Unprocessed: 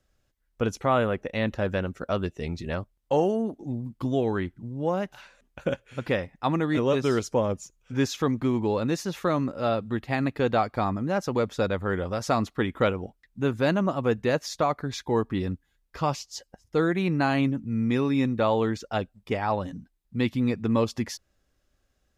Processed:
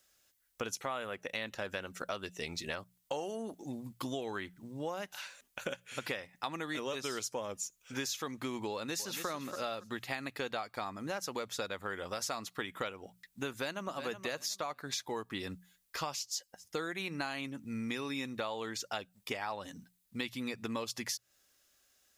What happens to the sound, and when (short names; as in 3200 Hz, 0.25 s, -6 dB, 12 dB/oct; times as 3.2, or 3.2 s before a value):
8.71–9.27 echo throw 0.28 s, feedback 30%, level -11.5 dB
13.49–14.05 echo throw 0.37 s, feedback 20%, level -12 dB
whole clip: tilt +4 dB/oct; notches 60/120/180 Hz; compressor 6:1, threshold -35 dBFS